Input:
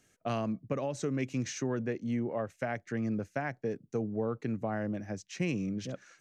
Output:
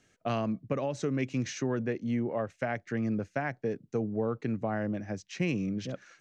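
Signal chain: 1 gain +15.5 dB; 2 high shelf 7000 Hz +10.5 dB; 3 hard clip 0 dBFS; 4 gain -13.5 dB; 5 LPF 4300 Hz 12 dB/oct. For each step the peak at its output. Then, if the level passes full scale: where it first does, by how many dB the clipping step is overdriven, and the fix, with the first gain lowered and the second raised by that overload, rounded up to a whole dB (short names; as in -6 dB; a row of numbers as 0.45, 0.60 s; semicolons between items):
-4.0, -3.5, -3.5, -17.0, -17.0 dBFS; no overload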